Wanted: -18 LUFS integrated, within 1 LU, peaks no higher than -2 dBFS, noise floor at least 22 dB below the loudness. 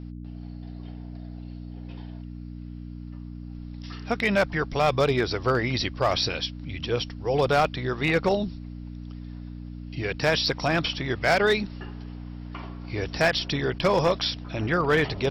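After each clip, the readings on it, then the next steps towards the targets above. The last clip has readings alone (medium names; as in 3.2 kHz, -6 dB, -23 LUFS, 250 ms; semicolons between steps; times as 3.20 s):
clipped samples 0.4%; clipping level -14.5 dBFS; hum 60 Hz; highest harmonic 300 Hz; hum level -35 dBFS; loudness -25.0 LUFS; peak level -14.5 dBFS; loudness target -18.0 LUFS
-> clip repair -14.5 dBFS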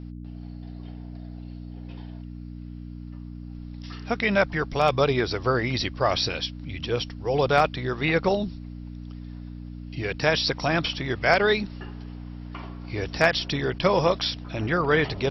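clipped samples 0.0%; hum 60 Hz; highest harmonic 300 Hz; hum level -35 dBFS
-> de-hum 60 Hz, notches 5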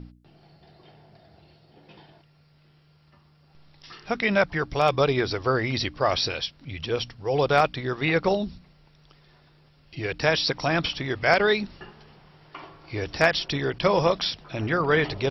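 hum not found; loudness -24.5 LUFS; peak level -5.5 dBFS; loudness target -18.0 LUFS
-> trim +6.5 dB; peak limiter -2 dBFS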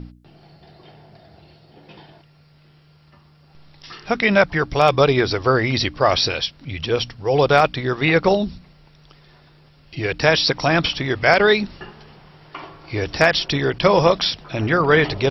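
loudness -18.0 LUFS; peak level -2.0 dBFS; noise floor -52 dBFS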